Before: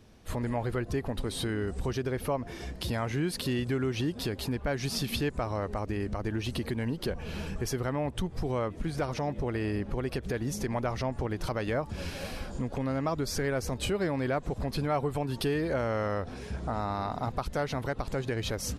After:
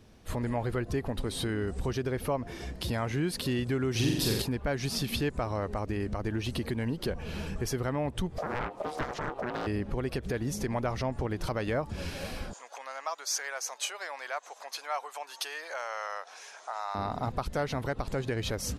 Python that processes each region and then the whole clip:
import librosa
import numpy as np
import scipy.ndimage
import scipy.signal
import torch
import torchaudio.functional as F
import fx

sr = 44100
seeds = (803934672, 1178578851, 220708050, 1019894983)

y = fx.chain(x, sr, fx.bass_treble(bass_db=1, treble_db=9),
    fx.room_flutter(wall_m=7.6, rt60_s=0.97), at=(3.91, 4.42))
y = fx.chain(y, sr, fx.ring_mod(carrier_hz=610.0),
    fx.doppler_dist(depth_ms=0.84), at=(8.38, 9.67))
y = fx.chain(y, sr, fx.highpass(hz=740.0, slope=24),
    fx.peak_eq(hz=6300.0, db=11.0, octaves=0.3), at=(12.53, 16.95))